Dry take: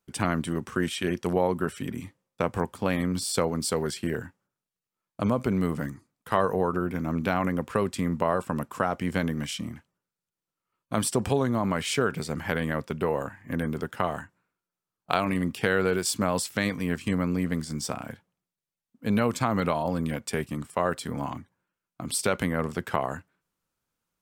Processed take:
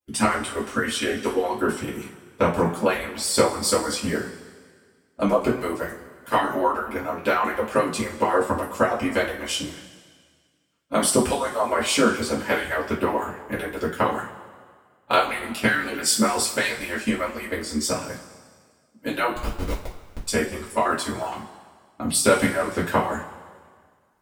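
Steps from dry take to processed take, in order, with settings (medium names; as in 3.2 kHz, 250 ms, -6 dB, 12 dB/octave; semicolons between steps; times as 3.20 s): harmonic-percussive separation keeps percussive; 19.30–20.25 s: Schmitt trigger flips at -23 dBFS; two-slope reverb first 0.29 s, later 1.8 s, from -17 dB, DRR -7.5 dB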